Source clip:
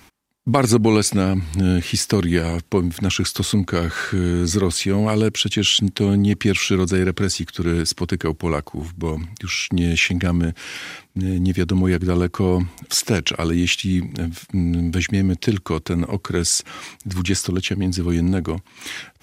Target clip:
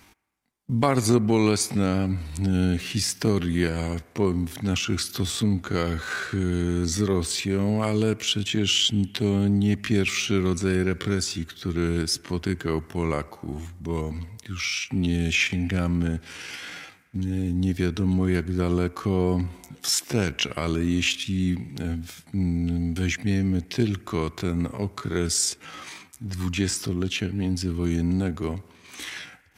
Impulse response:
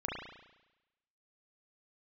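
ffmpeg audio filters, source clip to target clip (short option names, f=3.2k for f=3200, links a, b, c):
-filter_complex "[0:a]atempo=0.65,asplit=2[a][b];[1:a]atrim=start_sample=2205,asetrate=30429,aresample=44100,lowshelf=f=500:g=-10.5[c];[b][c]afir=irnorm=-1:irlink=0,volume=-21dB[d];[a][d]amix=inputs=2:normalize=0,volume=-5.5dB"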